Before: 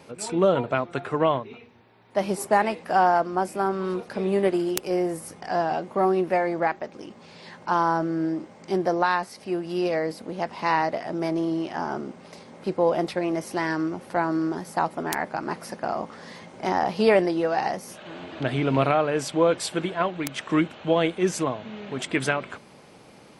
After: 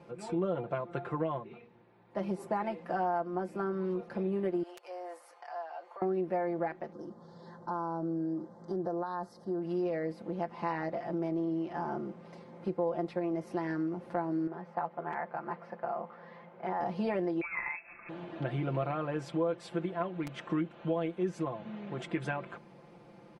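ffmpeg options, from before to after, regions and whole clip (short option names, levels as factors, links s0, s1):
-filter_complex "[0:a]asettb=1/sr,asplit=3[s0][s1][s2];[s0]atrim=end=4.634[s3];[s1]atrim=start=4.63:end=6.02,asetpts=PTS-STARTPTS,afade=t=in:d=0.004:c=qsin,afade=t=out:st=1.386:d=0.004:c=qsin,highpass=f=660:w=0.5412,highpass=f=660:w=1.3066,acompressor=threshold=0.0158:ratio=3:attack=3.2:release=140:knee=1:detection=peak,aeval=exprs='val(0)+0.00178*sin(2*PI*4400*n/s)':c=same[s4];[s2]atrim=start=6.016[s5];[s3][s4]acrossfade=d=0.004:c1=hsin:c2=qsin[s6];[s6][s5]acrossfade=d=0.004:c1=qsin:c2=hsin,asettb=1/sr,asplit=3[s7][s8][s9];[s7]atrim=end=6.924[s10];[s8]atrim=start=6.92:end=9.62,asetpts=PTS-STARTPTS,afade=t=in:d=0.004:c=qsin,afade=t=out:st=2.696:d=0.004:c=qsin,acompressor=threshold=0.0501:ratio=3:attack=3.2:release=140:knee=1:detection=peak,asuperstop=centerf=2500:order=4:qfactor=1.1[s11];[s9]atrim=start=9.616[s12];[s10][s11]acrossfade=d=0.004:c1=hsin:c2=qsin[s13];[s13][s12]acrossfade=d=0.004:c1=qsin:c2=hsin,asettb=1/sr,asplit=3[s14][s15][s16];[s14]atrim=end=14.474[s17];[s15]atrim=start=14.47:end=16.8,asetpts=PTS-STARTPTS,afade=t=in:d=0.004:c=qsin,afade=t=out:st=2.326:d=0.004:c=qsin,equalizer=f=290:w=2:g=-13,aeval=exprs='(mod(2.37*val(0)+1,2)-1)/2.37':c=same,highpass=200,lowpass=2400[s18];[s16]atrim=start=16.796[s19];[s17][s18]acrossfade=d=0.004:c1=hsin:c2=qsin[s20];[s20][s19]acrossfade=d=0.004:c1=qsin:c2=hsin,asettb=1/sr,asplit=3[s21][s22][s23];[s21]atrim=end=17.414[s24];[s22]atrim=start=17.41:end=18.09,asetpts=PTS-STARTPTS,afade=t=in:d=0.004:c=qsin,afade=t=out:st=0.676:d=0.004:c=qsin,agate=range=0.0224:threshold=0.0158:ratio=3:release=100:detection=peak,lowpass=f=2400:t=q:w=0.5098,lowpass=f=2400:t=q:w=0.6013,lowpass=f=2400:t=q:w=0.9,lowpass=f=2400:t=q:w=2.563,afreqshift=-2800,acompressor=mode=upward:threshold=0.0355:ratio=2.5:attack=3.2:release=140:knee=2.83:detection=peak[s25];[s23]atrim=start=18.086[s26];[s24][s25]acrossfade=d=0.004:c1=hsin:c2=qsin[s27];[s27][s26]acrossfade=d=0.004:c1=qsin:c2=hsin,lowpass=f=1100:p=1,aecho=1:1:5.8:0.77,acompressor=threshold=0.0501:ratio=2.5,volume=0.531"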